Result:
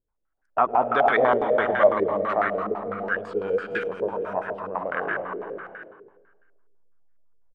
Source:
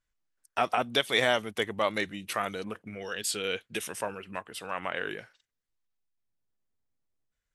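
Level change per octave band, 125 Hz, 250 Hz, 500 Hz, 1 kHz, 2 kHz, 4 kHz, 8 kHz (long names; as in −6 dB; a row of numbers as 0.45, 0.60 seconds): +2.0 dB, +5.5 dB, +10.0 dB, +9.5 dB, +4.5 dB, below −10 dB, below −25 dB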